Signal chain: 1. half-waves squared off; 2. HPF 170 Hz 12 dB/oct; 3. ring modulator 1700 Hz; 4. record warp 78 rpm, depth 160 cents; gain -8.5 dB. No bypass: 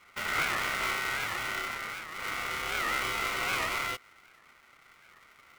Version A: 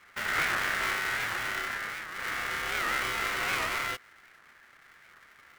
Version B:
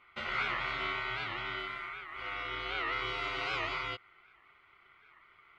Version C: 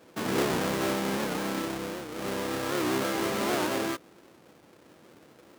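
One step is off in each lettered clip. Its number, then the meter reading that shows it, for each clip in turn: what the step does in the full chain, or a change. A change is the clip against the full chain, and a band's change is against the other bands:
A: 2, 2 kHz band +2.0 dB; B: 1, distortion -5 dB; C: 3, 250 Hz band +16.0 dB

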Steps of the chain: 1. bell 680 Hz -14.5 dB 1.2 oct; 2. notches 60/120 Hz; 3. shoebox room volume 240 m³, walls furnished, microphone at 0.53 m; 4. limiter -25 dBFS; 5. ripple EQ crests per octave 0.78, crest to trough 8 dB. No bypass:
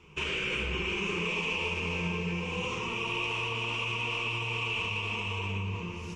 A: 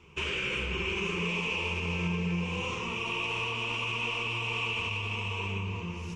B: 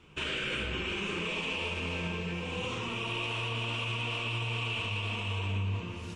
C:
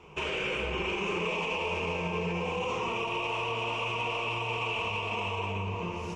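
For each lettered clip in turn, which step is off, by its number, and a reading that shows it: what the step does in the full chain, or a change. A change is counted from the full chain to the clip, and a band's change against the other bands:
3, 250 Hz band +1.5 dB; 5, 125 Hz band +3.5 dB; 1, 1 kHz band +7.0 dB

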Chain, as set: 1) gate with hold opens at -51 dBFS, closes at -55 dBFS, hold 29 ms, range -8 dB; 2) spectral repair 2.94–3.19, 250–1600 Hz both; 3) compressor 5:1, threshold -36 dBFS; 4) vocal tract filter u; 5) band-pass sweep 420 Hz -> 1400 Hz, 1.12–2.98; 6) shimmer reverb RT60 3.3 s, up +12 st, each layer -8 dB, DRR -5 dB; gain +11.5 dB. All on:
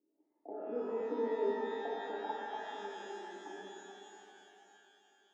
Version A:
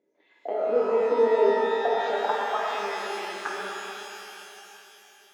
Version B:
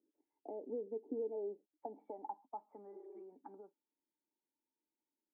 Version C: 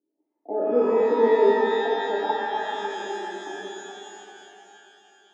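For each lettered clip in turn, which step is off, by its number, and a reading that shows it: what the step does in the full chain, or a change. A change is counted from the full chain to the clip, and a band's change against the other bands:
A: 4, 250 Hz band -8.5 dB; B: 6, loudness change -6.5 LU; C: 3, mean gain reduction 12.5 dB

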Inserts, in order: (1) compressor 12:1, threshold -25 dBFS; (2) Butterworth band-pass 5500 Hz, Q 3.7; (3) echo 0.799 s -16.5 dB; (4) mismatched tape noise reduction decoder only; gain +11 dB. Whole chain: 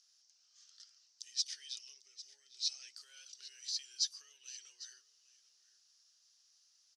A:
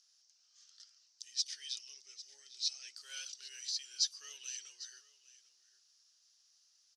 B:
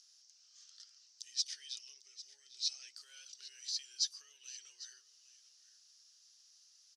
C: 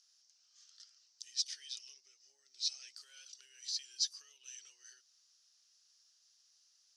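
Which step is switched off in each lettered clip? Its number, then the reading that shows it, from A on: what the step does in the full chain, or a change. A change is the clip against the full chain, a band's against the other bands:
1, mean gain reduction 2.5 dB; 4, momentary loudness spread change +4 LU; 3, momentary loudness spread change +4 LU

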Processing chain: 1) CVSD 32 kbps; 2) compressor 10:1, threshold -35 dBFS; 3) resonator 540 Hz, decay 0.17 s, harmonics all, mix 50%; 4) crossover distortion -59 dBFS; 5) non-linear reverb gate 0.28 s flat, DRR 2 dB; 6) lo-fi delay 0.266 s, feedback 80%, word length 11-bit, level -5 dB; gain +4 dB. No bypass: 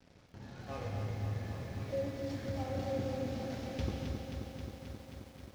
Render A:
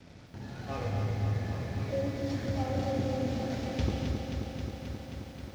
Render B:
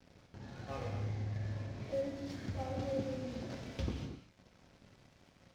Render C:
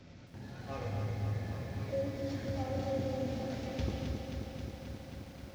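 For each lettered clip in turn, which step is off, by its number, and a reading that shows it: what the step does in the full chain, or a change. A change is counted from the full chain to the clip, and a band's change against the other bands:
3, 500 Hz band -2.0 dB; 6, momentary loudness spread change -1 LU; 4, distortion -16 dB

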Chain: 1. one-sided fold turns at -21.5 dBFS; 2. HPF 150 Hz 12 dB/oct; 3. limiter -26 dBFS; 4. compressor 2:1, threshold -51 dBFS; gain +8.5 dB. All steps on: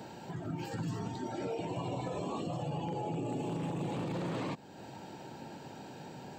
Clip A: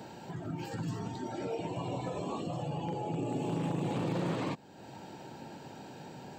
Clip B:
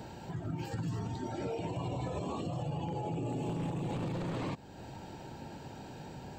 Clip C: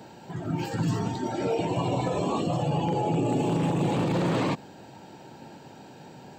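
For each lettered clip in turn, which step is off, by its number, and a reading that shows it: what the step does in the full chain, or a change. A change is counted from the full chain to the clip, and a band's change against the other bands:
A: 3, crest factor change +5.0 dB; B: 2, 125 Hz band +3.5 dB; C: 4, mean gain reduction 7.0 dB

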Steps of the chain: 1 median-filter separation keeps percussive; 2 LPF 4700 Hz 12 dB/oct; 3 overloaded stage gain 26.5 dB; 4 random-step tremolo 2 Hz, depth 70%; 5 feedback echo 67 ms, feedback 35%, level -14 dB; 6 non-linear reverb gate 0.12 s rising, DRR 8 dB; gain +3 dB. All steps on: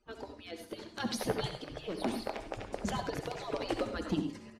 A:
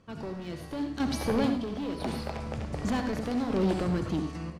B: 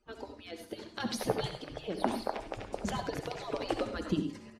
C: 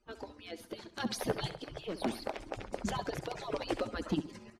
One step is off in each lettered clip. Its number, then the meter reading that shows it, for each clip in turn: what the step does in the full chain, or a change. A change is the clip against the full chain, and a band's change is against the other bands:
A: 1, 125 Hz band +6.0 dB; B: 3, distortion -12 dB; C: 6, echo-to-direct -6.5 dB to -13.5 dB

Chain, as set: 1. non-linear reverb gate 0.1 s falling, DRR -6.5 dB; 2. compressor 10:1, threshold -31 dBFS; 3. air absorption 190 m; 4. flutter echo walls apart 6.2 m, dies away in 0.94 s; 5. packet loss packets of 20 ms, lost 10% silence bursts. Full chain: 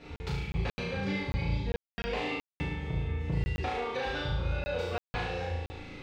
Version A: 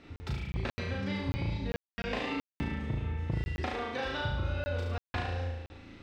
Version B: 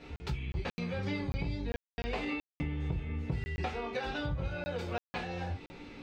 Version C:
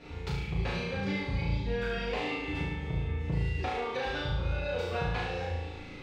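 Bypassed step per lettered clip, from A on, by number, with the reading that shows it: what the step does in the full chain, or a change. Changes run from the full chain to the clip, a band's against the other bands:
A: 1, 500 Hz band -1.5 dB; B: 4, crest factor change +2.5 dB; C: 5, momentary loudness spread change -2 LU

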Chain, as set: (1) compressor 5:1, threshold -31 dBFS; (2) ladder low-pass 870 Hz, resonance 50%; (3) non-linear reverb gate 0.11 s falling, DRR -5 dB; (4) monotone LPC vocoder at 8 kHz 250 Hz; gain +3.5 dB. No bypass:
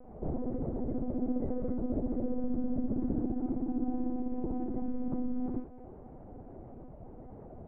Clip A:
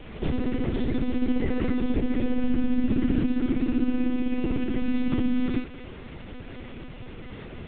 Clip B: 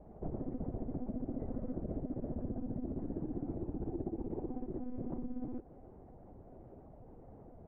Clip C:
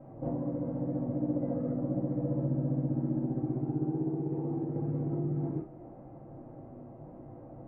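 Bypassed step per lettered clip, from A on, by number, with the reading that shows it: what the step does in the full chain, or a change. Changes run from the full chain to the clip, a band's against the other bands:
2, 1 kHz band -3.5 dB; 3, loudness change -6.5 LU; 4, loudness change +2.0 LU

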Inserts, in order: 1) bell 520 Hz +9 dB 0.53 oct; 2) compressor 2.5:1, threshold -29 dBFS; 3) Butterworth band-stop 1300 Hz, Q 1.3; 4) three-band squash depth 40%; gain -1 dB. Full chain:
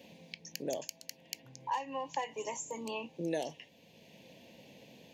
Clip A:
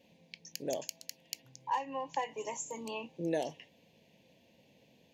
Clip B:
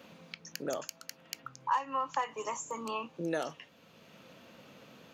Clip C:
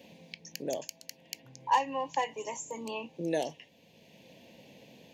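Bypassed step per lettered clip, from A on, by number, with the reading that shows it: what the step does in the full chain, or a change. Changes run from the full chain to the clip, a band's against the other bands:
4, momentary loudness spread change -7 LU; 3, 1 kHz band +4.5 dB; 2, crest factor change -3.5 dB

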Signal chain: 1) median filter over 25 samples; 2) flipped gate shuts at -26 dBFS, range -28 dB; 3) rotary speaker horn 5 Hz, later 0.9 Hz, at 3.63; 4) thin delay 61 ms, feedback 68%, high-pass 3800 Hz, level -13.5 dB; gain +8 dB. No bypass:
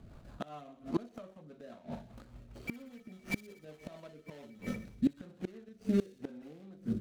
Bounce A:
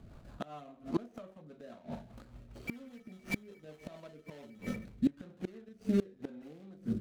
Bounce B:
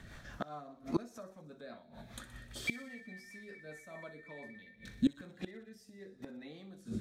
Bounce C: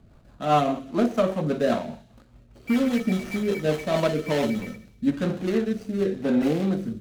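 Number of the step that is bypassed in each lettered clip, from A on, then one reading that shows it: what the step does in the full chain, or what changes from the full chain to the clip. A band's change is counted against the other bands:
4, echo-to-direct -23.0 dB to none; 1, 125 Hz band -6.5 dB; 2, momentary loudness spread change -13 LU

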